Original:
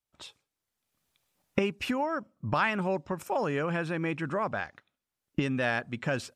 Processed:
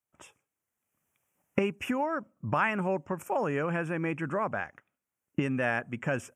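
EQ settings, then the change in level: HPF 78 Hz; Butterworth band-stop 4200 Hz, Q 1.2; 0.0 dB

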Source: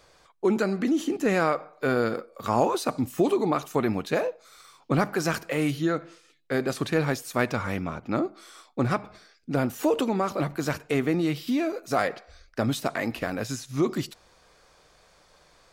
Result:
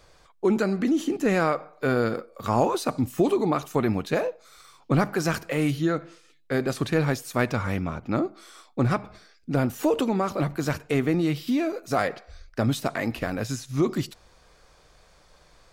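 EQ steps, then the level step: low shelf 110 Hz +9.5 dB; 0.0 dB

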